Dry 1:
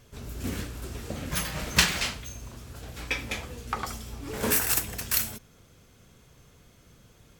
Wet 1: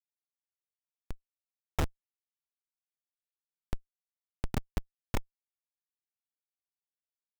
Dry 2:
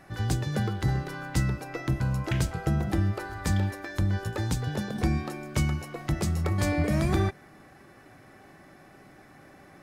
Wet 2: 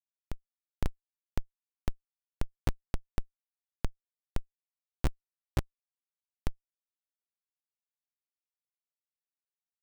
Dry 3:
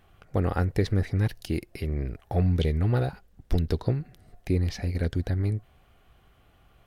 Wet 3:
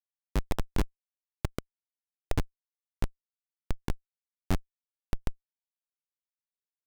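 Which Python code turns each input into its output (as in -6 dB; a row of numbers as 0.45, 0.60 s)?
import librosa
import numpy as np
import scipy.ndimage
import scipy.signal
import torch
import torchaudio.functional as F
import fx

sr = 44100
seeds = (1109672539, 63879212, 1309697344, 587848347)

p1 = fx.highpass(x, sr, hz=43.0, slope=6)
p2 = fx.dereverb_blind(p1, sr, rt60_s=1.2)
p3 = fx.over_compress(p2, sr, threshold_db=-34.0, ratio=-0.5)
p4 = p2 + (p3 * 10.0 ** (-2.0 / 20.0))
p5 = fx.sample_hold(p4, sr, seeds[0], rate_hz=4400.0, jitter_pct=0)
p6 = fx.schmitt(p5, sr, flips_db=-17.0)
y = p6 * 10.0 ** (5.5 / 20.0)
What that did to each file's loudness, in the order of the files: -11.5, -12.5, -9.5 LU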